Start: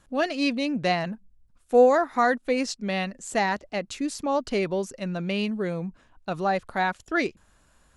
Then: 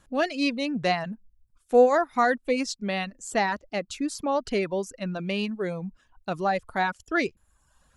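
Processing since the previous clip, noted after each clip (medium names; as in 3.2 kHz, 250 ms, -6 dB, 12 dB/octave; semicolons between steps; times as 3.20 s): reverb removal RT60 0.73 s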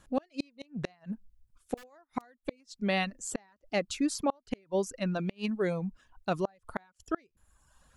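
integer overflow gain 11 dB; inverted gate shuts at -18 dBFS, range -36 dB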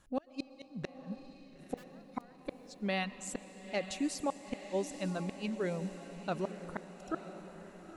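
echo that smears into a reverb 926 ms, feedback 50%, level -11 dB; reverberation RT60 3.7 s, pre-delay 85 ms, DRR 15.5 dB; trim -5 dB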